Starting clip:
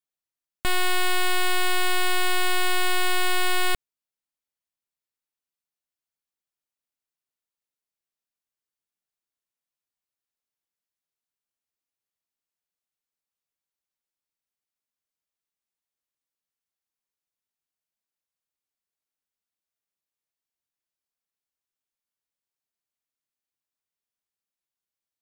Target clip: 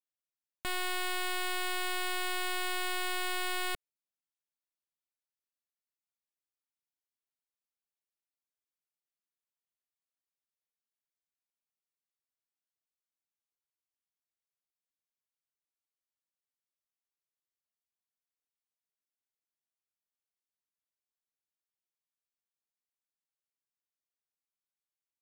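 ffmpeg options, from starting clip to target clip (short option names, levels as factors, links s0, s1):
-af "lowshelf=f=140:g=-7.5,volume=0.355"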